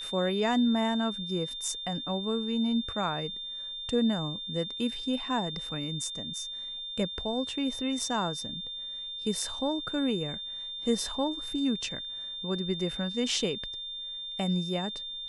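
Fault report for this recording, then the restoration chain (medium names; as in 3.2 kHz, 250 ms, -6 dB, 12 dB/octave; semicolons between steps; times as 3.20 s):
whine 3.6 kHz -36 dBFS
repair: band-stop 3.6 kHz, Q 30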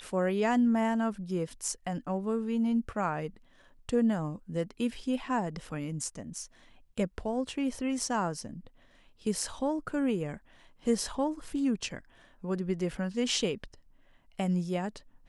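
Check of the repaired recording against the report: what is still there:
nothing left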